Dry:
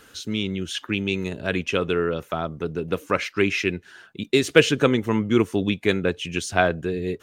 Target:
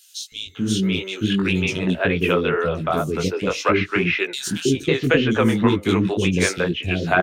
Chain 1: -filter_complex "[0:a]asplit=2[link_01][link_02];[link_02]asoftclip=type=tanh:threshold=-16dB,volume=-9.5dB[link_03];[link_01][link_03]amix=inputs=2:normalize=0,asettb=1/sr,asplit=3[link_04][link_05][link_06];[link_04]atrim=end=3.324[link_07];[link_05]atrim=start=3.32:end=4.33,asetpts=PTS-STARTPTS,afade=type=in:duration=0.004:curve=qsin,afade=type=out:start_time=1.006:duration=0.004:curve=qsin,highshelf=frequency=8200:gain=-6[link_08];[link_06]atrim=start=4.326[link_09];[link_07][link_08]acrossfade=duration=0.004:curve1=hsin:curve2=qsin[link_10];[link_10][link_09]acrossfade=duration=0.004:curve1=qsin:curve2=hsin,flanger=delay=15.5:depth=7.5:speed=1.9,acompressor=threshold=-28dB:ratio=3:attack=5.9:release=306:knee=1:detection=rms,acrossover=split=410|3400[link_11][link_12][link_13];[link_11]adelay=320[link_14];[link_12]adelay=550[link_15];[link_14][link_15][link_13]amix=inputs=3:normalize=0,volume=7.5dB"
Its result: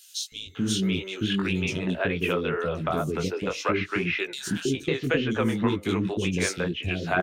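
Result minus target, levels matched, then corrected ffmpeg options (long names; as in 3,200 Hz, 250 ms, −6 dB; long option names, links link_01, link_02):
downward compressor: peak gain reduction +7.5 dB
-filter_complex "[0:a]asplit=2[link_01][link_02];[link_02]asoftclip=type=tanh:threshold=-16dB,volume=-9.5dB[link_03];[link_01][link_03]amix=inputs=2:normalize=0,asettb=1/sr,asplit=3[link_04][link_05][link_06];[link_04]atrim=end=3.324[link_07];[link_05]atrim=start=3.32:end=4.33,asetpts=PTS-STARTPTS,afade=type=in:duration=0.004:curve=qsin,afade=type=out:start_time=1.006:duration=0.004:curve=qsin,highshelf=frequency=8200:gain=-6[link_08];[link_06]atrim=start=4.326[link_09];[link_07][link_08]acrossfade=duration=0.004:curve1=hsin:curve2=qsin[link_10];[link_10][link_09]acrossfade=duration=0.004:curve1=qsin:curve2=hsin,flanger=delay=15.5:depth=7.5:speed=1.9,acompressor=threshold=-17dB:ratio=3:attack=5.9:release=306:knee=1:detection=rms,acrossover=split=410|3400[link_11][link_12][link_13];[link_11]adelay=320[link_14];[link_12]adelay=550[link_15];[link_14][link_15][link_13]amix=inputs=3:normalize=0,volume=7.5dB"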